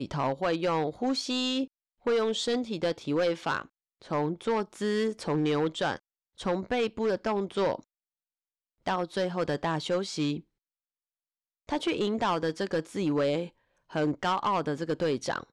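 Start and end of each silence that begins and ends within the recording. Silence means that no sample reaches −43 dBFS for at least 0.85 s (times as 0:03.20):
0:07.80–0:08.86
0:10.40–0:11.69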